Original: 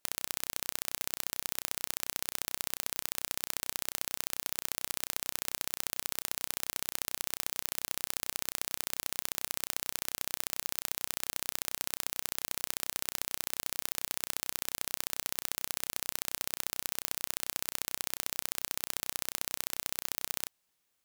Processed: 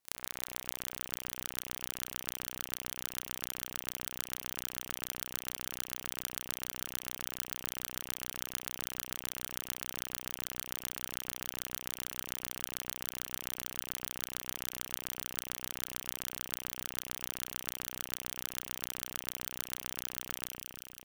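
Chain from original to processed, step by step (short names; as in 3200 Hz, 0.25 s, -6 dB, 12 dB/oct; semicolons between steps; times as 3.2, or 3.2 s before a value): echo with dull and thin repeats by turns 0.112 s, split 2100 Hz, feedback 81%, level -3 dB; ring modulator 200 Hz; gain -2 dB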